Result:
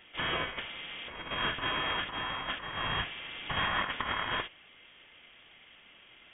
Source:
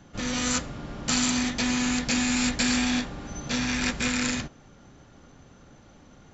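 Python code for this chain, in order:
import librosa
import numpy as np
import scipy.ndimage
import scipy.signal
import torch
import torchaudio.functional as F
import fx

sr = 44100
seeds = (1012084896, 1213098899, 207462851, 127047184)

y = fx.highpass(x, sr, hz=1000.0, slope=6)
y = fx.over_compress(y, sr, threshold_db=-32.0, ratio=-0.5)
y = fx.freq_invert(y, sr, carrier_hz=3500)
y = F.gain(torch.from_numpy(y), 1.5).numpy()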